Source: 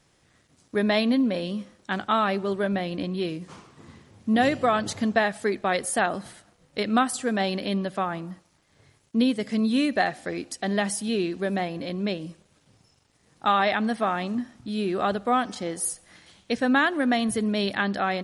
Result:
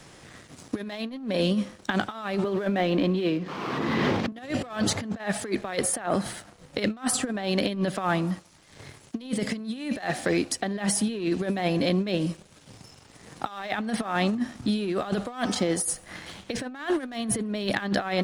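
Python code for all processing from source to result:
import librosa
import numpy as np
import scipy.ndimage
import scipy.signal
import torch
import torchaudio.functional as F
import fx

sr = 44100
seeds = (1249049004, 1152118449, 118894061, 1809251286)

y = fx.chain(x, sr, fx.highpass(hz=210.0, slope=12),
    fx.air_absorb(metres=250.0),
    fx.pre_swell(db_per_s=30.0), at=(2.44, 4.32))
y = fx.over_compress(y, sr, threshold_db=-30.0, ratio=-0.5)
y = fx.leveller(y, sr, passes=1)
y = fx.band_squash(y, sr, depth_pct=40)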